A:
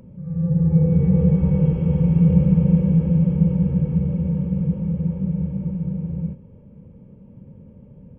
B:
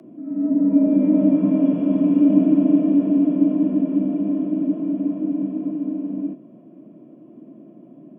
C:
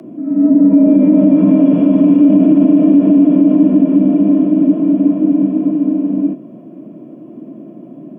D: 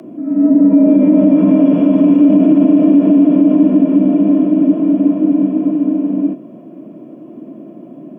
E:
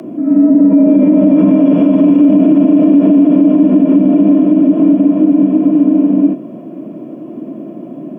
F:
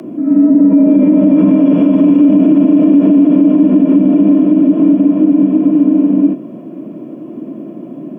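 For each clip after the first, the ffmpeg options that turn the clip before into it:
-af "afreqshift=120"
-af "alimiter=level_in=12dB:limit=-1dB:release=50:level=0:latency=1,volume=-1dB"
-af "lowshelf=f=230:g=-7,volume=2.5dB"
-af "alimiter=limit=-8dB:level=0:latency=1:release=105,volume=6.5dB"
-af "equalizer=f=670:t=o:w=0.39:g=-4"

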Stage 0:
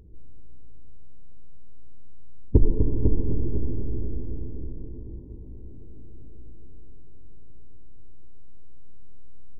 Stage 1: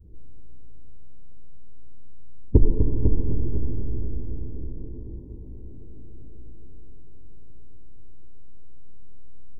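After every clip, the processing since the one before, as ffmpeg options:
-af "adynamicequalizer=threshold=0.00891:dfrequency=370:dqfactor=0.72:tfrequency=370:tqfactor=0.72:attack=5:release=100:ratio=0.375:range=2:mode=cutabove:tftype=bell,volume=1.5dB"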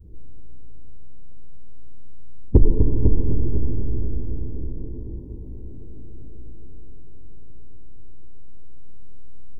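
-af "asoftclip=type=tanh:threshold=-4dB,volume=4dB"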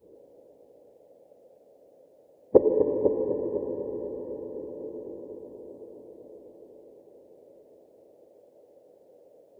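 -af "highpass=f=540:t=q:w=4.9,volume=4dB"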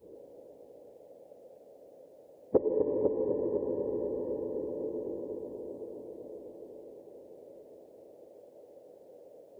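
-af "acompressor=threshold=-33dB:ratio=2,volume=2.5dB"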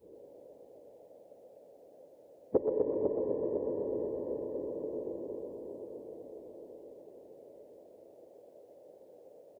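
-filter_complex "[0:a]asplit=6[a][b][c][d][e][f];[b]adelay=124,afreqshift=35,volume=-7.5dB[g];[c]adelay=248,afreqshift=70,volume=-14.1dB[h];[d]adelay=372,afreqshift=105,volume=-20.6dB[i];[e]adelay=496,afreqshift=140,volume=-27.2dB[j];[f]adelay=620,afreqshift=175,volume=-33.7dB[k];[a][g][h][i][j][k]amix=inputs=6:normalize=0,volume=-3dB"

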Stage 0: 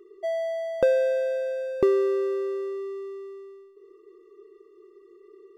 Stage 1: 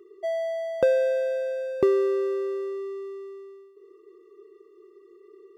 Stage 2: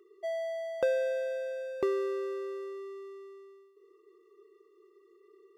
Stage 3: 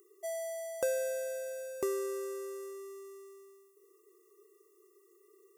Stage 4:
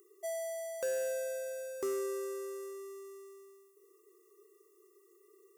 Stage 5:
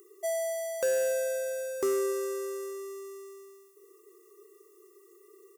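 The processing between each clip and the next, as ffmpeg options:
-af "highpass=57"
-af "equalizer=f=130:w=0.37:g=-11,volume=-3.5dB"
-af "aexciter=amount=10.4:drive=7.2:freq=5.9k,volume=-4dB"
-af "asoftclip=type=hard:threshold=-31dB"
-af "aecho=1:1:292:0.0794,volume=7dB"

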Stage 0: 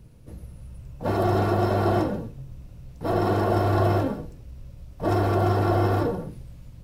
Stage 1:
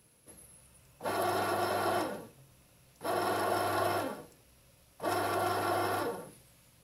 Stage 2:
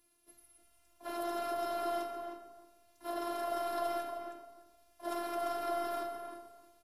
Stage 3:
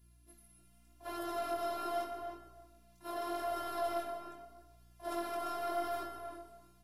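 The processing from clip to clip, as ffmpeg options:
-af "highpass=f=1.3k:p=1,equalizer=f=11k:w=4.4:g=12"
-filter_complex "[0:a]afftfilt=real='hypot(re,im)*cos(PI*b)':imag='0':win_size=512:overlap=0.75,asplit=2[a][b];[b]adelay=309,lowpass=f=2k:p=1,volume=-6dB,asplit=2[c][d];[d]adelay=309,lowpass=f=2k:p=1,volume=0.2,asplit=2[e][f];[f]adelay=309,lowpass=f=2k:p=1,volume=0.2[g];[c][e][g]amix=inputs=3:normalize=0[h];[a][h]amix=inputs=2:normalize=0,volume=-4dB"
-af "aeval=exprs='val(0)+0.000708*(sin(2*PI*60*n/s)+sin(2*PI*2*60*n/s)/2+sin(2*PI*3*60*n/s)/3+sin(2*PI*4*60*n/s)/4+sin(2*PI*5*60*n/s)/5)':c=same,flanger=delay=18:depth=4.5:speed=0.82,volume=2dB"

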